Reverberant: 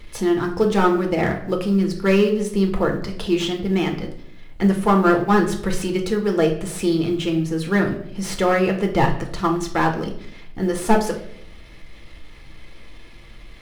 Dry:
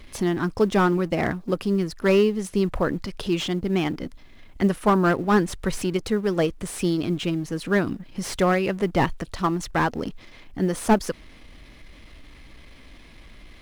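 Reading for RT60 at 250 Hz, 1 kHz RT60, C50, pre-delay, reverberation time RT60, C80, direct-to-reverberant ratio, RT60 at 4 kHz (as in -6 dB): 0.95 s, 0.60 s, 9.0 dB, 4 ms, 0.70 s, 12.5 dB, 2.0 dB, 0.50 s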